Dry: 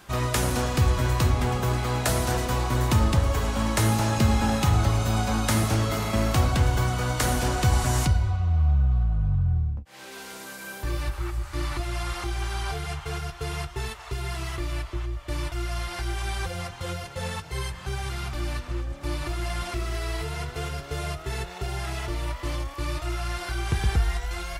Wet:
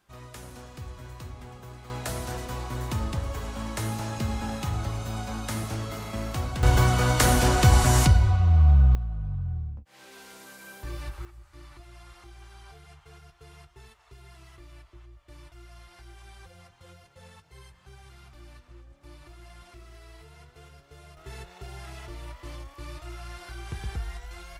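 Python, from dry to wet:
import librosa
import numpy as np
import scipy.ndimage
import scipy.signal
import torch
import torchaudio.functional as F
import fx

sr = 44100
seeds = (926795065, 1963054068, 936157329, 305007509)

y = fx.gain(x, sr, db=fx.steps((0.0, -19.0), (1.9, -8.5), (6.63, 4.0), (8.95, -7.5), (11.25, -19.0), (21.17, -10.5)))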